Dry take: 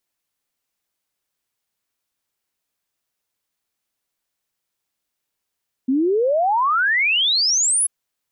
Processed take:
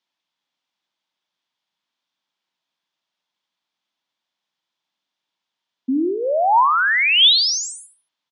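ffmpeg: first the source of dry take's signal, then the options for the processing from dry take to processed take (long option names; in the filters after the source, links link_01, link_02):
-f lavfi -i "aevalsrc='0.178*clip(min(t,1.99-t)/0.01,0,1)*sin(2*PI*250*1.99/log(11000/250)*(exp(log(11000/250)*t/1.99)-1))':duration=1.99:sample_rate=44100"
-filter_complex "[0:a]highpass=frequency=150:width=0.5412,highpass=frequency=150:width=1.3066,equalizer=frequency=440:width_type=q:width=4:gain=-8,equalizer=frequency=940:width_type=q:width=4:gain=6,equalizer=frequency=3400:width_type=q:width=4:gain=8,lowpass=frequency=5600:width=0.5412,lowpass=frequency=5600:width=1.3066,asplit=2[link_01][link_02];[link_02]aecho=0:1:73|146|219:0.282|0.0874|0.0271[link_03];[link_01][link_03]amix=inputs=2:normalize=0"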